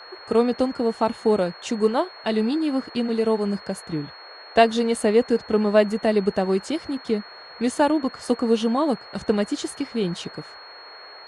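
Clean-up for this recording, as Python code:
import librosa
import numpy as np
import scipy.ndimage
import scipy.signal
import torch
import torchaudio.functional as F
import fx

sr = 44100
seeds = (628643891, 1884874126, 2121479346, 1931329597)

y = fx.notch(x, sr, hz=4300.0, q=30.0)
y = fx.noise_reduce(y, sr, print_start_s=10.62, print_end_s=11.12, reduce_db=24.0)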